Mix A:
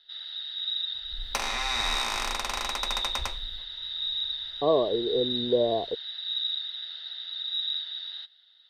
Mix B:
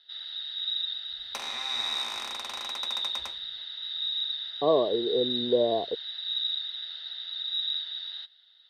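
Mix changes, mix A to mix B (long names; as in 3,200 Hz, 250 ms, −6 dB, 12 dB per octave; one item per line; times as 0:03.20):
second sound −8.0 dB
master: add high-pass filter 130 Hz 12 dB per octave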